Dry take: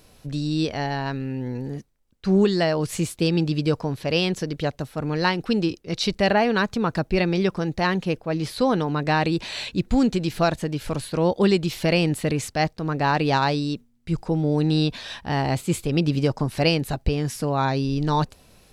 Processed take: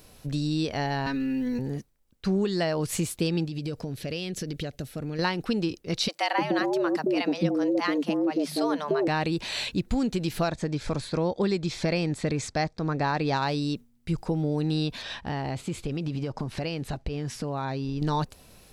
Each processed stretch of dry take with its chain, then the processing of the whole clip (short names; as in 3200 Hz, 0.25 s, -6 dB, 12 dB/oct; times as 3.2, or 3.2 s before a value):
1.06–1.59 bell 680 Hz -9 dB 1 oct + comb 4 ms, depth 89% + three-band squash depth 40%
3.45–5.19 bell 1000 Hz -12 dB 0.74 oct + compressor, threshold -28 dBFS
6.08–9.08 low shelf 210 Hz +11 dB + frequency shift +140 Hz + bands offset in time highs, lows 0.3 s, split 660 Hz
10.49–13.36 LPF 7700 Hz 24 dB/oct + notch 2900 Hz, Q 6.4
15.02–18.02 block floating point 7-bit + compressor, threshold -26 dBFS + air absorption 78 m
whole clip: high shelf 11000 Hz +6.5 dB; compressor 3:1, threshold -24 dBFS